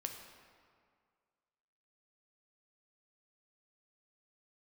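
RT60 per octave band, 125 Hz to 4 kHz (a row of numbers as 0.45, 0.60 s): 1.9, 1.9, 2.0, 2.0, 1.7, 1.3 s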